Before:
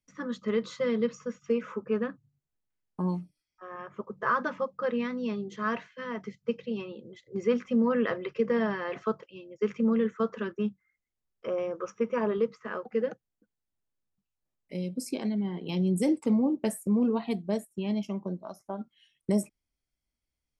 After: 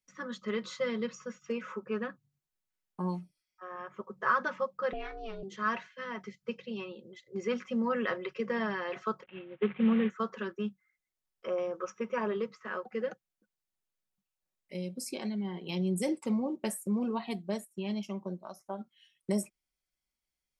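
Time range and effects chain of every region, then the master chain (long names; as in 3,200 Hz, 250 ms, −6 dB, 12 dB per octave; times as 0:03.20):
0:04.93–0:05.43: high-shelf EQ 3,500 Hz −9.5 dB + ring modulation 220 Hz
0:09.23–0:10.10: variable-slope delta modulation 16 kbit/s + high-pass filter 61 Hz + parametric band 130 Hz +8 dB 2.8 octaves
whole clip: low-shelf EQ 500 Hz −8.5 dB; comb filter 5.4 ms, depth 38%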